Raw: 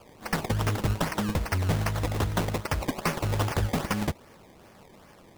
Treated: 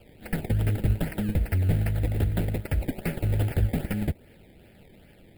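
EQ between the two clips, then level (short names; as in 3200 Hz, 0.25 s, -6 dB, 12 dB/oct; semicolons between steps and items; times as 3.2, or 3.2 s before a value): dynamic EQ 3400 Hz, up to -7 dB, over -50 dBFS, Q 0.94; low shelf 90 Hz +8 dB; fixed phaser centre 2600 Hz, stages 4; 0.0 dB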